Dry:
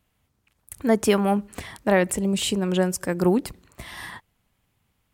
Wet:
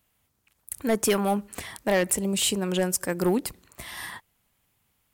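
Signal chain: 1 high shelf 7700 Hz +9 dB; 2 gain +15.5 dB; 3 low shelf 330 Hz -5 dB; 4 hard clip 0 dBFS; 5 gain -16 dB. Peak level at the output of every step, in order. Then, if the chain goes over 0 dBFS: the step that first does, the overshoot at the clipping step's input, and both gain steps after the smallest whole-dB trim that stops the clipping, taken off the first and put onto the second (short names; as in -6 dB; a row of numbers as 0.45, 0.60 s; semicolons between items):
-6.0, +9.5, +8.0, 0.0, -16.0 dBFS; step 2, 8.0 dB; step 2 +7.5 dB, step 5 -8 dB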